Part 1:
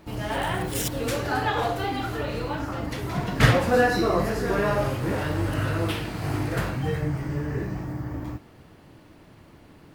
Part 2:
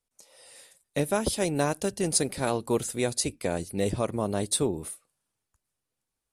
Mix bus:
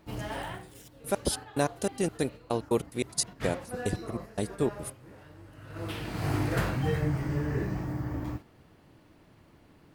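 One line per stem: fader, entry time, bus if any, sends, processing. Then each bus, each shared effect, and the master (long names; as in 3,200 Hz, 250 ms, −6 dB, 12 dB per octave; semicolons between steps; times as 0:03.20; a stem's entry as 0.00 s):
−1.5 dB, 0.00 s, no send, automatic ducking −17 dB, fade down 0.85 s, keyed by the second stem
−0.5 dB, 0.00 s, no send, gate pattern ".x.x..x.x" 144 BPM −60 dB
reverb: not used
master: noise gate −39 dBFS, range −6 dB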